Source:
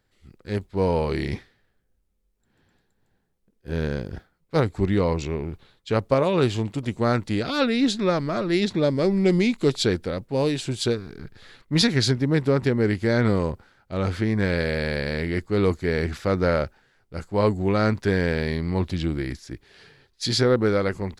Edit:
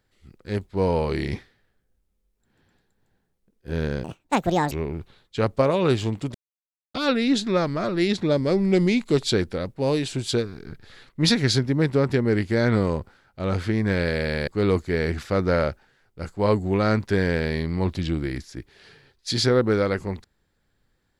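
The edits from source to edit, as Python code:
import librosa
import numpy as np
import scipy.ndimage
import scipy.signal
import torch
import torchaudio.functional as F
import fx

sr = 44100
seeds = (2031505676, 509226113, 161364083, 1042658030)

y = fx.edit(x, sr, fx.speed_span(start_s=4.04, length_s=1.2, speed=1.78),
    fx.silence(start_s=6.87, length_s=0.6),
    fx.cut(start_s=15.0, length_s=0.42), tone=tone)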